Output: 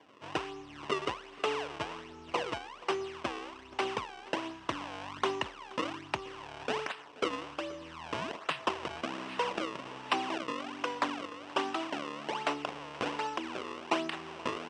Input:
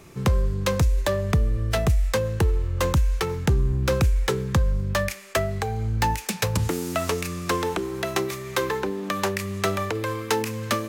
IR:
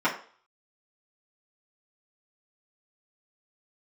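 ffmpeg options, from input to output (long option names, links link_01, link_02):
-filter_complex "[0:a]equalizer=frequency=5600:width=2.2:gain=7,acrusher=samples=24:mix=1:aa=0.000001:lfo=1:lforange=38.4:lforate=1.7,highpass=460,equalizer=frequency=1400:width_type=q:width=4:gain=8,equalizer=frequency=3800:width_type=q:width=4:gain=8,equalizer=frequency=5800:width_type=q:width=4:gain=-5,equalizer=frequency=9300:width_type=q:width=4:gain=-8,lowpass=frequency=9700:width=0.5412,lowpass=frequency=9700:width=1.3066,asplit=2[link_01][link_02];[link_02]aecho=0:1:354:0.1[link_03];[link_01][link_03]amix=inputs=2:normalize=0,asetrate=32667,aresample=44100,volume=-8dB"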